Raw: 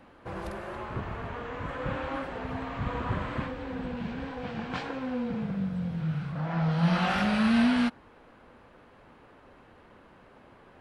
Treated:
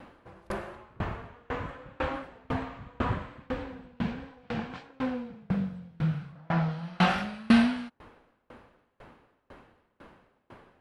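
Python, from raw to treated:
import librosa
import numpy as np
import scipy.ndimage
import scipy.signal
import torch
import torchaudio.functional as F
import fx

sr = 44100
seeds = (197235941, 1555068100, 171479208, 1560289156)

y = fx.tremolo_decay(x, sr, direction='decaying', hz=2.0, depth_db=32)
y = F.gain(torch.from_numpy(y), 7.5).numpy()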